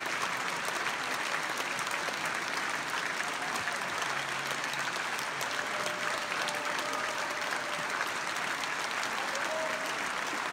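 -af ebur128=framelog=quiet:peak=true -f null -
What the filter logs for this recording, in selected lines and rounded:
Integrated loudness:
  I:         -32.2 LUFS
  Threshold: -42.2 LUFS
Loudness range:
  LRA:         0.3 LU
  Threshold: -52.2 LUFS
  LRA low:   -32.3 LUFS
  LRA high:  -32.0 LUFS
True peak:
  Peak:      -13.8 dBFS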